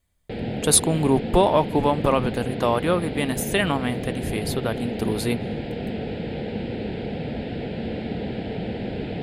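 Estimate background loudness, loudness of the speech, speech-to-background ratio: −30.0 LKFS, −23.0 LKFS, 7.0 dB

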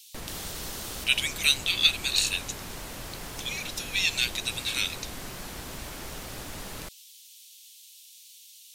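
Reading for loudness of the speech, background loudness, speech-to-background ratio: −26.5 LKFS, −39.0 LKFS, 12.5 dB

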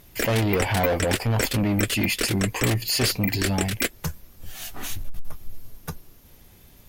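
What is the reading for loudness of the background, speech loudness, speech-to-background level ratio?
−28.5 LKFS, −25.0 LKFS, 3.5 dB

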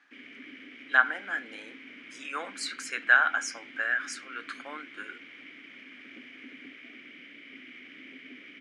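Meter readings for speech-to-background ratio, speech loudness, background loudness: 18.5 dB, −28.0 LKFS, −46.5 LKFS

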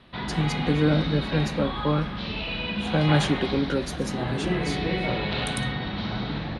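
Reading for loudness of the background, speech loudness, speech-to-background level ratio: −29.0 LKFS, −26.5 LKFS, 2.5 dB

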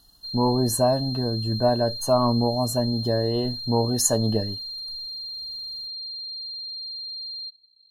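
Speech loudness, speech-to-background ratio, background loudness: −23.5 LKFS, 8.0 dB, −31.5 LKFS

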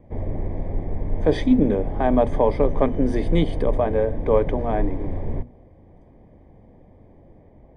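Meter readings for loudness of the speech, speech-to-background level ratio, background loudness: −22.0 LKFS, 8.0 dB, −30.0 LKFS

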